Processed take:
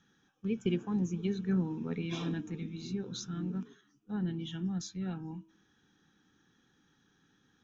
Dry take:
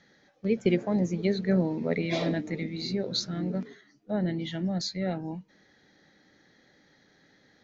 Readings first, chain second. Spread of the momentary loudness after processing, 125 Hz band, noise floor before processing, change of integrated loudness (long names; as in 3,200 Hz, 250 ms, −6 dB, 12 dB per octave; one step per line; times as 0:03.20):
9 LU, −4.5 dB, −63 dBFS, −6.5 dB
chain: phaser with its sweep stopped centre 3,000 Hz, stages 8
hum removal 323.5 Hz, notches 11
level −3.5 dB